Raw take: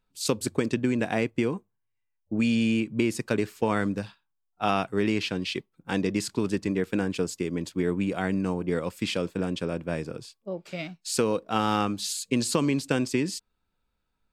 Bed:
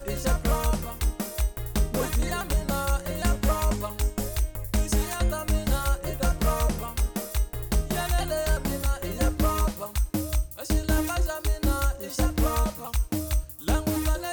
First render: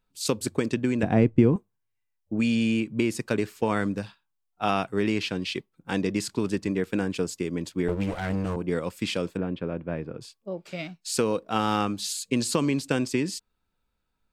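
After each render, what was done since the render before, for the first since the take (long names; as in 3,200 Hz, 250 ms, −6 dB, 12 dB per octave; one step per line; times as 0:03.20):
0:01.03–0:01.56: spectral tilt −4 dB per octave
0:07.88–0:08.56: lower of the sound and its delayed copy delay 9.3 ms
0:09.37–0:10.21: high-frequency loss of the air 460 metres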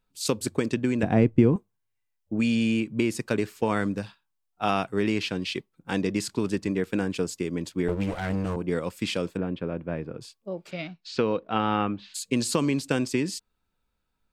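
0:10.70–0:12.14: low-pass filter 5,400 Hz → 2,500 Hz 24 dB per octave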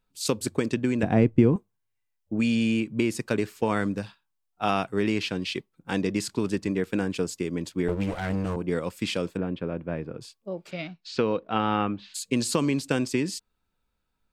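no processing that can be heard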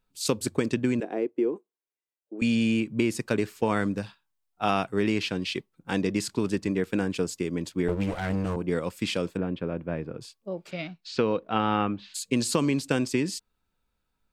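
0:01.00–0:02.42: four-pole ladder high-pass 320 Hz, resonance 55%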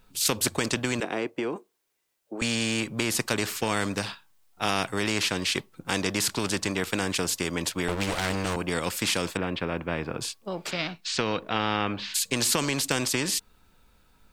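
in parallel at −2.5 dB: brickwall limiter −18 dBFS, peak gain reduction 8 dB
on the sum: every bin compressed towards the loudest bin 2 to 1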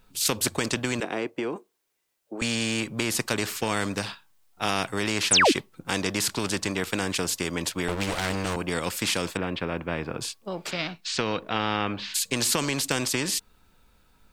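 0:05.31–0:05.52: sound drawn into the spectrogram fall 230–11,000 Hz −18 dBFS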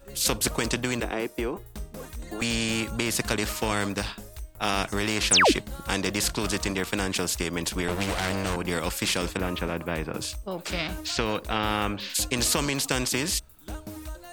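mix in bed −13 dB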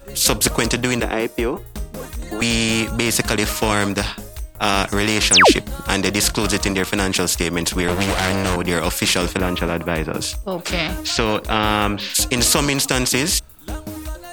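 level +8.5 dB
brickwall limiter −2 dBFS, peak gain reduction 3 dB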